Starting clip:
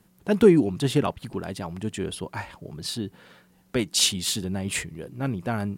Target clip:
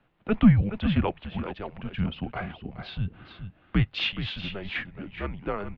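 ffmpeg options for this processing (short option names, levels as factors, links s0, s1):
-filter_complex "[0:a]asettb=1/sr,asplit=3[s0][s1][s2];[s0]atrim=end=1.954[s3];[s1]atrim=start=1.95:end=3.84,asetpts=PTS-STARTPTS,afade=t=in:d=0.004:c=qsin,afade=t=out:st=1.886:d=0.004:c=qsin,equalizer=f=290:t=o:w=0.78:g=9[s4];[s2]atrim=start=3.836[s5];[s3][s4]acrossfade=d=0.004:c1=hsin:c2=qsin[s6];[s6][s5]acrossfade=d=0.004:c1=qsin:c2=hsin,aecho=1:1:422:0.316,highpass=f=280:t=q:w=0.5412,highpass=f=280:t=q:w=1.307,lowpass=f=3400:t=q:w=0.5176,lowpass=f=3400:t=q:w=0.7071,lowpass=f=3400:t=q:w=1.932,afreqshift=-200"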